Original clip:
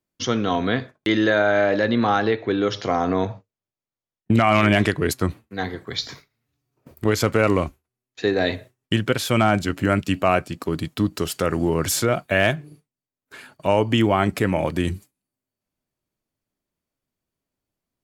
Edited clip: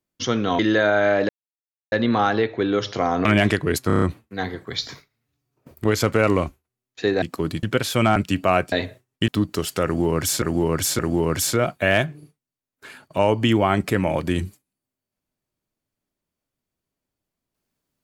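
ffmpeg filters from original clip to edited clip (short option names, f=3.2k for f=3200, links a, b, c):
-filter_complex "[0:a]asplit=16[a][b][c][d][e][f][g][h][i][j][k][l][m][n][o][p];[a]atrim=end=0.592[q];[b]atrim=start=1.108:end=1.81,asetpts=PTS-STARTPTS,afade=t=out:st=0.698:d=0.004:c=hsin,apad=pad_dur=0.63[r];[c]atrim=start=1.81:end=3.142,asetpts=PTS-STARTPTS,afade=t=in:d=0.004:c=hsin[s];[d]atrim=start=4.598:end=5.252[t];[e]atrim=start=5.218:end=5.252[u];[f]atrim=start=5.218:end=5.252[v];[g]atrim=start=5.218:end=5.252[w];[h]atrim=start=5.218:end=5.252[x];[i]atrim=start=5.218:end=8.422[y];[j]atrim=start=10.498:end=10.912[z];[k]atrim=start=8.978:end=9.512[aa];[l]atrim=start=9.938:end=10.502[ab];[m]atrim=start=8.418:end=8.982[ac];[n]atrim=start=10.908:end=12.052[ad];[o]atrim=start=11.478:end=12.052[ae];[p]atrim=start=11.478[af];[r][s]concat=n=2:v=0:a=1[ag];[q][ag]acrossfade=d=0.004:c1=hsin:c2=hsin[ah];[ah][t]acrossfade=d=0.004:c1=hsin:c2=hsin[ai];[ai][u]acrossfade=d=0.004:c1=hsin:c2=hsin[aj];[aj][v]acrossfade=d=0.004:c1=hsin:c2=hsin[ak];[ak][w]acrossfade=d=0.004:c1=hsin:c2=hsin[al];[al][x]acrossfade=d=0.004:c1=hsin:c2=hsin[am];[am][y]acrossfade=d=0.004:c1=hsin:c2=hsin[an];[an][z]acrossfade=d=0.004:c1=hsin:c2=hsin[ao];[ao][aa]acrossfade=d=0.004:c1=hsin:c2=hsin[ap];[ap][ab]acrossfade=d=0.004:c1=hsin:c2=hsin[aq];[aq][ac]acrossfade=d=0.004:c1=hsin:c2=hsin[ar];[ar][ad]acrossfade=d=0.004:c1=hsin:c2=hsin[as];[as][ae]acrossfade=d=0.004:c1=hsin:c2=hsin[at];[at][af]acrossfade=d=0.004:c1=hsin:c2=hsin"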